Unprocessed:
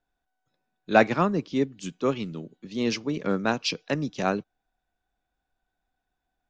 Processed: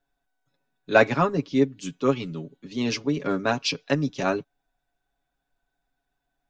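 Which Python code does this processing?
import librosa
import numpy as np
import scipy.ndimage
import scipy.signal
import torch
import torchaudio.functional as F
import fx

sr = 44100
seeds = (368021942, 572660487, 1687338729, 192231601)

y = x + 0.71 * np.pad(x, (int(7.2 * sr / 1000.0), 0))[:len(x)]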